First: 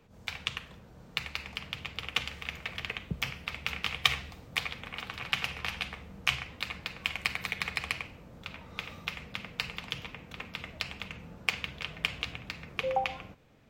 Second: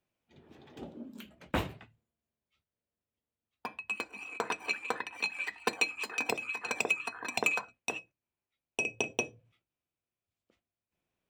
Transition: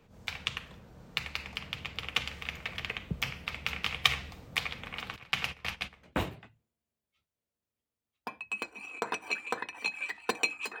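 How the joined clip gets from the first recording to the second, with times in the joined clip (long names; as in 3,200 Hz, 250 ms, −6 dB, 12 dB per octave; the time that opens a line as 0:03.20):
first
0:05.16–0:06.15: noise gate −36 dBFS, range −14 dB
0:06.05: continue with second from 0:01.43, crossfade 0.20 s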